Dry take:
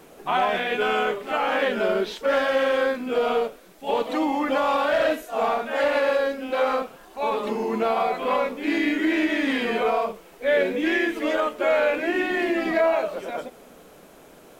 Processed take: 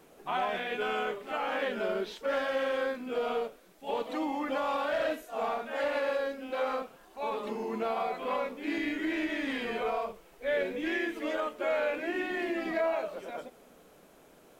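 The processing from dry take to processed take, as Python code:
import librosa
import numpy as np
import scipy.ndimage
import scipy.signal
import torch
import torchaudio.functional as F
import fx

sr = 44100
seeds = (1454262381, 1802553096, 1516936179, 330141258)

y = fx.low_shelf_res(x, sr, hz=140.0, db=6.5, q=1.5, at=(8.78, 10.89))
y = F.gain(torch.from_numpy(y), -9.0).numpy()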